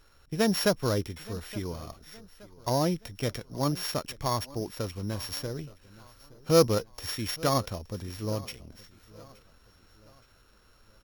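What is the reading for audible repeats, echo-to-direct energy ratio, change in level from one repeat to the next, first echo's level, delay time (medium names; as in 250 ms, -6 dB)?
3, -20.0 dB, -7.0 dB, -21.0 dB, 871 ms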